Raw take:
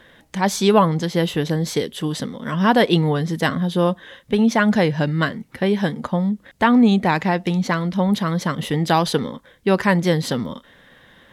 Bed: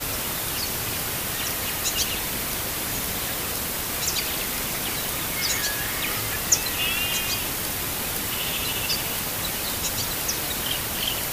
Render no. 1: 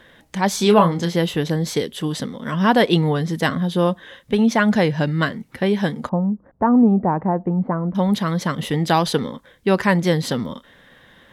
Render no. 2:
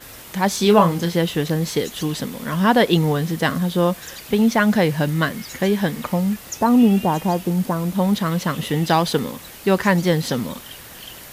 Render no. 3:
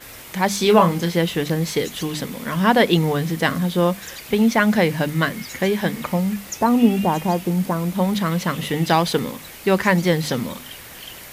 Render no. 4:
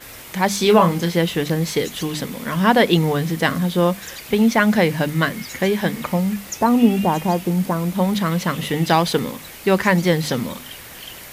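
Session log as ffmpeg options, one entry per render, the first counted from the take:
-filter_complex "[0:a]asettb=1/sr,asplit=3[a][b][c];[a]atrim=end=0.564[d];[b]atrim=start=0.56:end=1.16,asetpts=PTS-STARTPTS,afade=t=in:d=0.004:c=qsin,afade=t=out:st=0.596:d=0.004:c=qsin,asplit=2[e][f];[f]adelay=29,volume=-7dB[g];[e][g]amix=inputs=2:normalize=0,atrim=end_sample=26460[h];[c]atrim=start=1.156[i];[d][h]acrossfade=d=0.004:c1=hsin:c2=qsin[j];[j][i]acrossfade=d=0.004:c1=qsin:c2=hsin,asettb=1/sr,asplit=3[k][l][m];[k]atrim=end=6.094[n];[l]atrim=start=6.09:end=7.95,asetpts=PTS-STARTPTS,afade=t=in:d=0.004:c=qsin,afade=t=out:st=1.856:d=0.004:c=qsin,lowpass=f=1.1k:w=0.5412,lowpass=f=1.1k:w=1.3066[o];[m]atrim=start=7.946[p];[n][o]acrossfade=d=0.004:c1=hsin:c2=qsin[q];[q][p]acrossfade=d=0.004:c1=qsin:c2=hsin"
-filter_complex "[1:a]volume=-12dB[a];[0:a][a]amix=inputs=2:normalize=0"
-af "equalizer=f=2.2k:t=o:w=0.37:g=4.5,bandreject=f=50:t=h:w=6,bandreject=f=100:t=h:w=6,bandreject=f=150:t=h:w=6,bandreject=f=200:t=h:w=6,bandreject=f=250:t=h:w=6,bandreject=f=300:t=h:w=6"
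-af "volume=1dB,alimiter=limit=-3dB:level=0:latency=1"

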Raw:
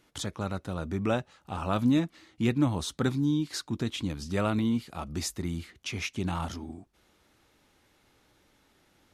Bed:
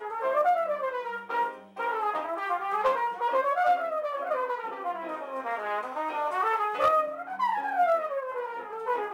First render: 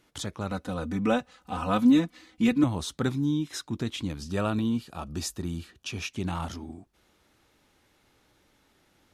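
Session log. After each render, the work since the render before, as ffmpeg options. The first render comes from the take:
-filter_complex "[0:a]asettb=1/sr,asplit=3[a][b][c];[a]atrim=end=0.514[d];[b]atrim=start=0.51:end=2.64,asetpts=PTS-STARTPTS,afade=t=in:d=0.004:c=qsin,afade=t=out:st=2.126:d=0.004:c=qsin,aecho=1:1:4:0.98,atrim=end_sample=93933[e];[c]atrim=start=2.636[f];[d][e]acrossfade=d=0.004:c1=hsin:c2=qsin[g];[g][f]acrossfade=d=0.004:c1=qsin:c2=hsin,asettb=1/sr,asplit=3[h][i][j];[h]atrim=end=3.144[k];[i]atrim=start=3.14:end=3.64,asetpts=PTS-STARTPTS,afade=t=in:d=0.004:c=qsin,afade=t=out:st=0.496:d=0.004:c=qsin,asuperstop=centerf=4500:order=20:qfactor=7.3[l];[j]atrim=start=3.636[m];[k][l]acrossfade=d=0.004:c1=hsin:c2=qsin[n];[n][m]acrossfade=d=0.004:c1=qsin:c2=hsin,asettb=1/sr,asplit=3[o][p][q];[o]atrim=end=4.274[r];[p]atrim=start=4.27:end=6.12,asetpts=PTS-STARTPTS,afade=t=in:d=0.004:c=qsin,afade=t=out:st=1.846:d=0.004:c=qsin,asuperstop=centerf=2100:order=4:qfactor=6[s];[q]atrim=start=6.116[t];[r][s]acrossfade=d=0.004:c1=hsin:c2=qsin[u];[u][t]acrossfade=d=0.004:c1=qsin:c2=hsin"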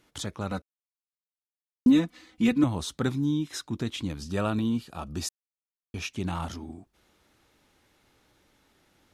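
-filter_complex "[0:a]asplit=5[a][b][c][d][e];[a]atrim=end=0.62,asetpts=PTS-STARTPTS,afade=t=out:st=0.616:d=0.004:c=hsin[f];[b]atrim=start=0.62:end=1.86,asetpts=PTS-STARTPTS,volume=0[g];[c]atrim=start=1.86:end=5.29,asetpts=PTS-STARTPTS,afade=t=in:d=0.004:c=hsin,afade=t=out:st=3.426:d=0.004:c=hsin[h];[d]atrim=start=5.29:end=5.94,asetpts=PTS-STARTPTS,volume=0[i];[e]atrim=start=5.94,asetpts=PTS-STARTPTS,afade=t=in:d=0.004:c=hsin[j];[f][g][h][i][j]concat=n=5:v=0:a=1"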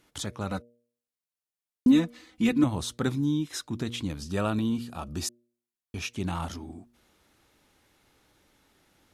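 -af "equalizer=f=11k:t=o:w=0.97:g=3,bandreject=f=119:t=h:w=4,bandreject=f=238:t=h:w=4,bandreject=f=357:t=h:w=4,bandreject=f=476:t=h:w=4,bandreject=f=595:t=h:w=4"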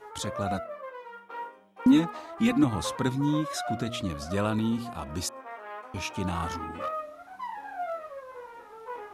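-filter_complex "[1:a]volume=-10dB[a];[0:a][a]amix=inputs=2:normalize=0"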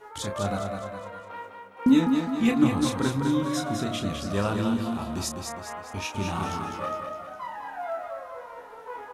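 -filter_complex "[0:a]asplit=2[a][b];[b]adelay=30,volume=-6.5dB[c];[a][c]amix=inputs=2:normalize=0,aecho=1:1:205|410|615|820|1025|1230:0.531|0.255|0.122|0.0587|0.0282|0.0135"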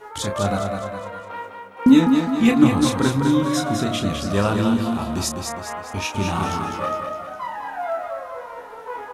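-af "volume=6.5dB"

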